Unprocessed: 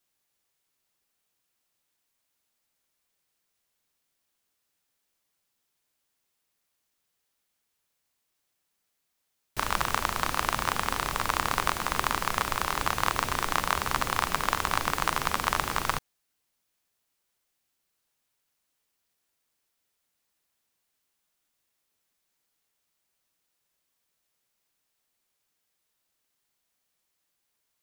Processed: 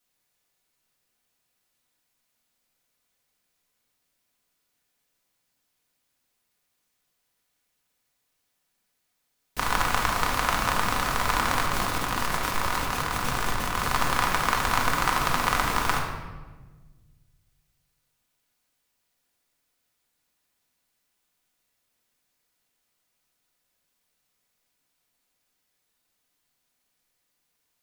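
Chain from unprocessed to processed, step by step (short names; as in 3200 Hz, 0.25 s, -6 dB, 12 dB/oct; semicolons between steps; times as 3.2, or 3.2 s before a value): 11.65–13.86 negative-ratio compressor -32 dBFS, ratio -1; reverb RT60 1.3 s, pre-delay 4 ms, DRR -1.5 dB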